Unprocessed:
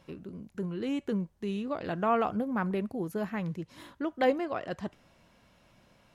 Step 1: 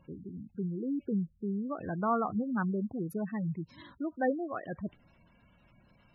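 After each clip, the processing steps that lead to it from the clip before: spectral gate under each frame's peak -15 dB strong; bell 550 Hz -7.5 dB 1.9 oct; gain +2.5 dB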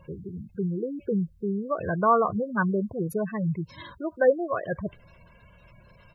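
comb 1.9 ms, depth 71%; gain +7.5 dB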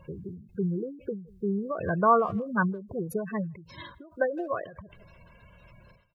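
speakerphone echo 0.16 s, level -23 dB; ending taper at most 110 dB/s

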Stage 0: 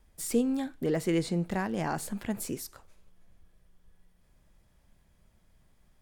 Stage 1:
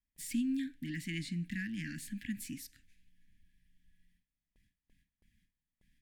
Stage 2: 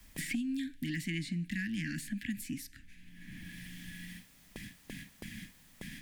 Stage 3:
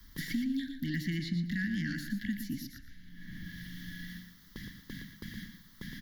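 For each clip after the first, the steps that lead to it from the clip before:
Chebyshev band-stop 290–1700 Hz, order 5; gate with hold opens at -54 dBFS; tone controls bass -8 dB, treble -8 dB
three-band squash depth 100%; gain +3 dB
fixed phaser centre 2500 Hz, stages 6; feedback echo 0.117 s, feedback 23%, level -8 dB; gain +3.5 dB

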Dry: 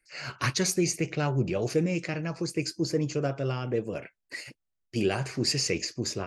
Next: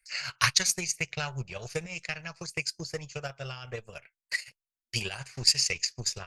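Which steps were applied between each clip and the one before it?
transient shaper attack +10 dB, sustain -10 dB; passive tone stack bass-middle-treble 10-0-10; gain +3.5 dB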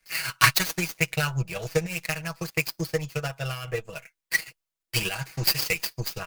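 switching dead time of 0.072 ms; comb 6.2 ms, depth 68%; gain +5.5 dB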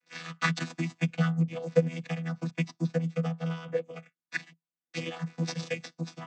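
chord vocoder bare fifth, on E3; gain -2 dB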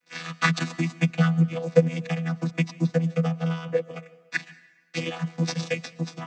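plate-style reverb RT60 1.2 s, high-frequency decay 0.9×, pre-delay 0.105 s, DRR 19 dB; gain +5.5 dB

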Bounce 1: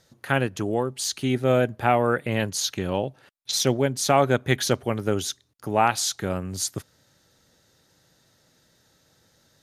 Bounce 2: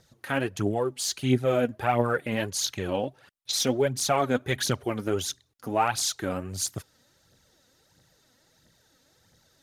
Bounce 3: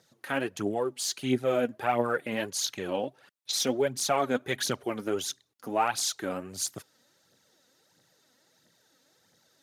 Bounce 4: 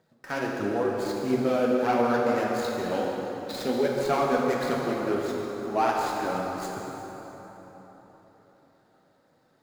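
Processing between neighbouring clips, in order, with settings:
in parallel at 0 dB: limiter -14.5 dBFS, peak gain reduction 9 dB; on the sum: phaser 1.5 Hz, delay 4.3 ms, feedback 55%; gain -9 dB
HPF 190 Hz 12 dB/oct; gain -2 dB
median filter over 15 samples; plate-style reverb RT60 4.2 s, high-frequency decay 0.6×, DRR -2.5 dB

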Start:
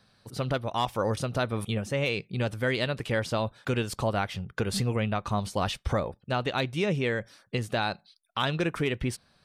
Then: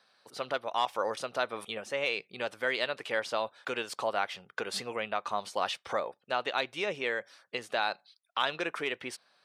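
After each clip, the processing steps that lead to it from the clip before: HPF 550 Hz 12 dB/oct; high shelf 8700 Hz -11 dB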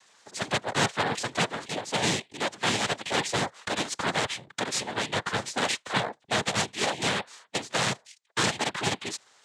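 added harmonics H 6 -7 dB, 7 -7 dB, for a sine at -13.5 dBFS; noise vocoder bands 6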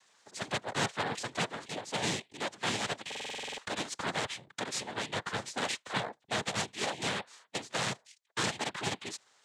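stuck buffer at 3.07, samples 2048, times 10; gain -6.5 dB

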